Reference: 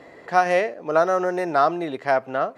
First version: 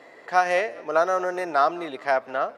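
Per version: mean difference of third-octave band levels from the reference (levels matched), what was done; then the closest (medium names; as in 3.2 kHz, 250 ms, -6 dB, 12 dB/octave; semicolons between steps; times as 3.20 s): 3.0 dB: high-pass 570 Hz 6 dB/octave; on a send: frequency-shifting echo 201 ms, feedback 48%, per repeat -41 Hz, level -22.5 dB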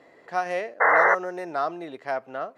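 5.0 dB: painted sound noise, 0.80–1.15 s, 420–2100 Hz -10 dBFS; bass shelf 110 Hz -10.5 dB; trim -8 dB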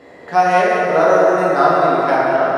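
6.5 dB: two-band feedback delay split 380 Hz, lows 133 ms, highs 182 ms, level -7 dB; plate-style reverb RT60 2.5 s, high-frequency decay 0.5×, DRR -6 dB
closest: first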